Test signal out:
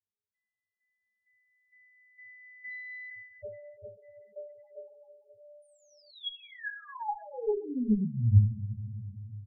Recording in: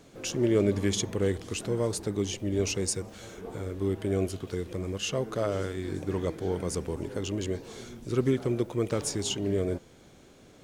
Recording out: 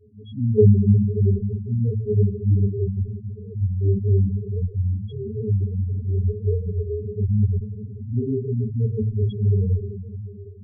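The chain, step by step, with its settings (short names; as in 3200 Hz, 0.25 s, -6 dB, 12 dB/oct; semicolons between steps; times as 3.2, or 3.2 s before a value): low shelf 230 Hz +11.5 dB; octave resonator G#, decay 0.11 s; two-slope reverb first 0.26 s, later 3.9 s, from -20 dB, DRR -4.5 dB; added harmonics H 3 -25 dB, 8 -21 dB, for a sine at -12.5 dBFS; loudest bins only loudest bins 4; gain +7 dB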